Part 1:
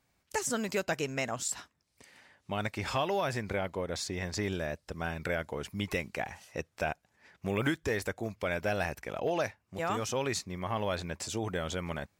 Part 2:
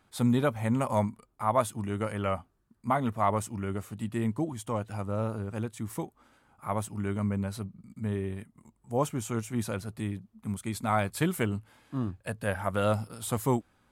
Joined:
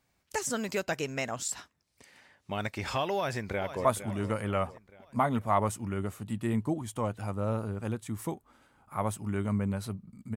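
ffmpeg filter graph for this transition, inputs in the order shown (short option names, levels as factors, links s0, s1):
-filter_complex "[0:a]apad=whole_dur=10.36,atrim=end=10.36,atrim=end=3.852[s0];[1:a]atrim=start=1.558:end=8.07[s1];[s0][s1]acrossfade=d=0.004:c1=hsin:c2=hsin,asplit=2[s2][s3];[s3]afade=t=in:st=3.15:d=0.01,afade=t=out:st=3.85:d=0.01,aecho=0:1:460|920|1380|1840|2300:0.266073|0.133036|0.0665181|0.0332591|0.0166295[s4];[s2][s4]amix=inputs=2:normalize=0"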